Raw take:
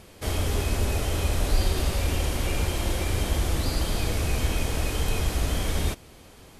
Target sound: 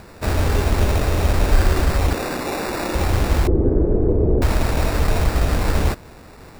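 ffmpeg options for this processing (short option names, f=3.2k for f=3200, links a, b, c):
-filter_complex "[0:a]asettb=1/sr,asplit=3[a][b][c];[a]atrim=end=2.134[d];[b]atrim=start=2.13:end=2.95,asetpts=PTS-STARTPTS,afade=t=in:d=0.004:c=qsin,afade=t=out:st=0.816:d=0.004:c=qsin,highpass=f=200:w=0.5412,highpass=f=200:w=1.3066[e];[c]atrim=start=2.946[f];[d][e]acrossfade=d=0.004:c1=hsin:c2=qsin[g];[g][f]acrossfade=d=0.004:c1=qsin:c2=hsin,acrusher=samples=14:mix=1:aa=0.000001,asettb=1/sr,asplit=3[h][i][j];[h]atrim=end=3.474[k];[i]atrim=start=3.47:end=4.42,asetpts=PTS-STARTPTS,afade=t=in:d=0.004:c=qsin,afade=t=out:st=0.946:d=0.004:c=qsin,lowpass=f=400:t=q:w=3.8[l];[j]atrim=start=4.416[m];[k][l]acrossfade=d=0.004:c1=hsin:c2=qsin[n];[n][m]acrossfade=d=0.004:c1=qsin:c2=hsin,volume=7.5dB"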